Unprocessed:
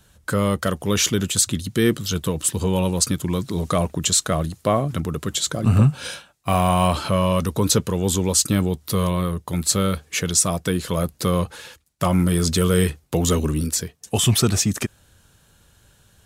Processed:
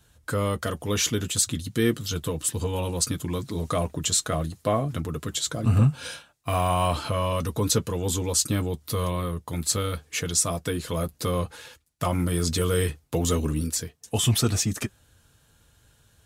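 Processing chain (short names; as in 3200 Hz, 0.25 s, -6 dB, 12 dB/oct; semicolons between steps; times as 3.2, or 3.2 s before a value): notch comb 190 Hz; gain -3.5 dB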